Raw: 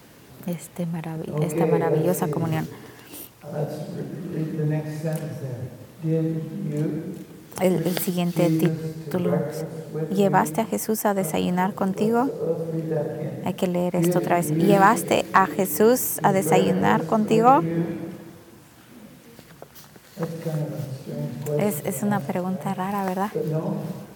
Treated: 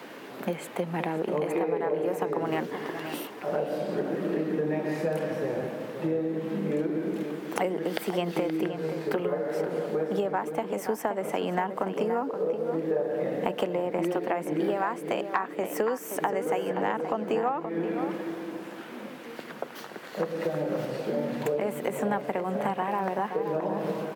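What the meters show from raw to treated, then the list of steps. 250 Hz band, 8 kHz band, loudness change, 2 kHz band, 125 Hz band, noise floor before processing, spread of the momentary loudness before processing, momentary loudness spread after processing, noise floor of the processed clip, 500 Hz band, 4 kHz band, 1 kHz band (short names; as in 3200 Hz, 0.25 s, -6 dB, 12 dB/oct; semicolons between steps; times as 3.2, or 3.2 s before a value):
-7.0 dB, -13.5 dB, -6.5 dB, -5.5 dB, -12.5 dB, -48 dBFS, 14 LU, 6 LU, -43 dBFS, -3.5 dB, -5.5 dB, -7.0 dB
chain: HPF 150 Hz; three-band isolator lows -21 dB, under 230 Hz, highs -14 dB, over 3500 Hz; compressor 12:1, threshold -34 dBFS, peak gain reduction 24 dB; outdoor echo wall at 90 m, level -8 dB; gain +9 dB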